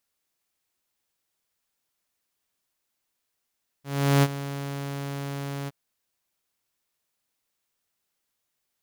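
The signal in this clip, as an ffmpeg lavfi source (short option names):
-f lavfi -i "aevalsrc='0.224*(2*mod(140*t,1)-1)':d=1.867:s=44100,afade=t=in:d=0.388,afade=t=out:st=0.388:d=0.043:silence=0.178,afade=t=out:st=1.84:d=0.027"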